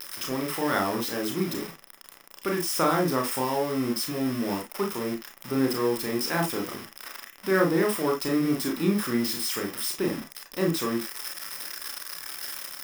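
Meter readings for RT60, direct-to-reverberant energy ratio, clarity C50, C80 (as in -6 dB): no single decay rate, 0.5 dB, 10.0 dB, 21.5 dB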